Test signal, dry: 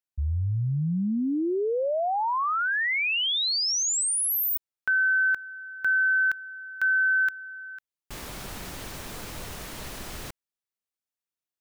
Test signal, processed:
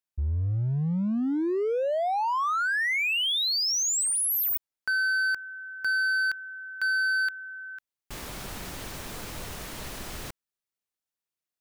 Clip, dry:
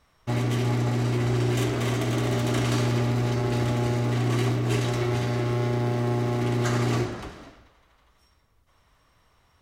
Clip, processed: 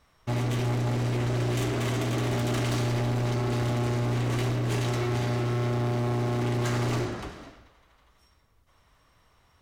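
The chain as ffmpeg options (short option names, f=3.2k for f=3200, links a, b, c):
-af "asoftclip=type=hard:threshold=-24dB"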